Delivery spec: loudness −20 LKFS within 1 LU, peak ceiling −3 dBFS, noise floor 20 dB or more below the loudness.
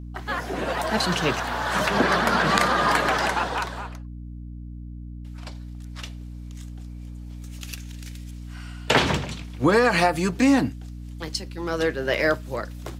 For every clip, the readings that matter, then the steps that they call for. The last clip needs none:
mains hum 60 Hz; hum harmonics up to 300 Hz; level of the hum −34 dBFS; integrated loudness −23.0 LKFS; sample peak −2.0 dBFS; target loudness −20.0 LKFS
→ hum removal 60 Hz, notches 5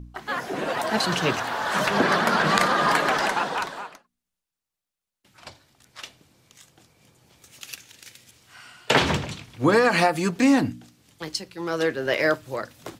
mains hum none found; integrated loudness −23.0 LKFS; sample peak −2.5 dBFS; target loudness −20.0 LKFS
→ level +3 dB
brickwall limiter −3 dBFS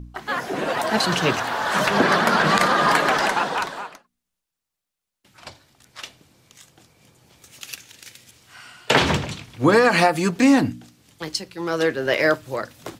integrated loudness −20.0 LKFS; sample peak −3.0 dBFS; background noise floor −84 dBFS

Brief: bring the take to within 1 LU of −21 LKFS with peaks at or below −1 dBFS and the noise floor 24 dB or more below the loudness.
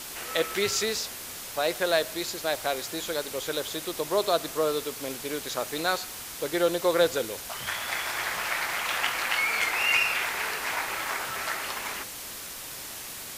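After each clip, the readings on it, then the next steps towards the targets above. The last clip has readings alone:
background noise floor −40 dBFS; target noise floor −52 dBFS; integrated loudness −28.0 LKFS; sample peak −9.0 dBFS; target loudness −21.0 LKFS
→ noise reduction from a noise print 12 dB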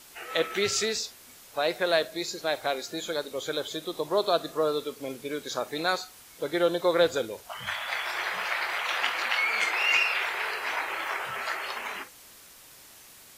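background noise floor −51 dBFS; target noise floor −53 dBFS
→ noise reduction from a noise print 6 dB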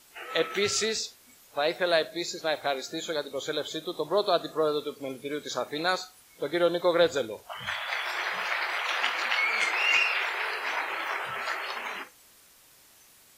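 background noise floor −57 dBFS; integrated loudness −28.5 LKFS; sample peak −9.0 dBFS; target loudness −21.0 LKFS
→ level +7.5 dB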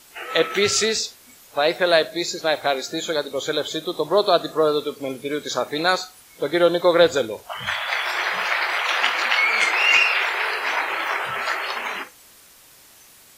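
integrated loudness −21.0 LKFS; sample peak −1.5 dBFS; background noise floor −50 dBFS

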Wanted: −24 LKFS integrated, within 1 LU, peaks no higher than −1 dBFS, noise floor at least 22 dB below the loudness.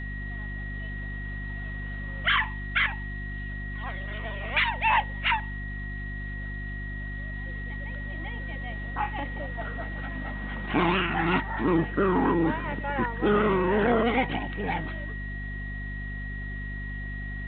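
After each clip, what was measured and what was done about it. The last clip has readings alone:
mains hum 50 Hz; hum harmonics up to 250 Hz; level of the hum −33 dBFS; interfering tone 1,900 Hz; level of the tone −38 dBFS; integrated loudness −29.0 LKFS; sample peak −11.5 dBFS; target loudness −24.0 LKFS
→ mains-hum notches 50/100/150/200/250 Hz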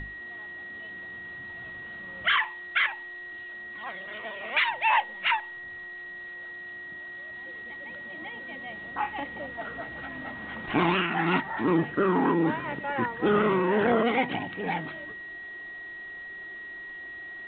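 mains hum none found; interfering tone 1,900 Hz; level of the tone −38 dBFS
→ notch filter 1,900 Hz, Q 30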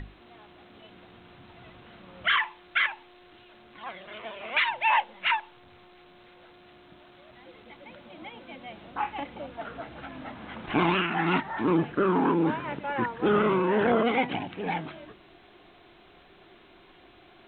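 interfering tone none found; integrated loudness −27.0 LKFS; sample peak −12.0 dBFS; target loudness −24.0 LKFS
→ level +3 dB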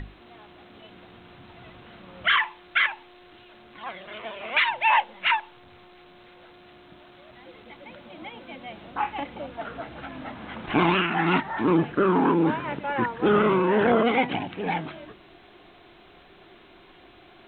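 integrated loudness −24.0 LKFS; sample peak −9.0 dBFS; background noise floor −52 dBFS

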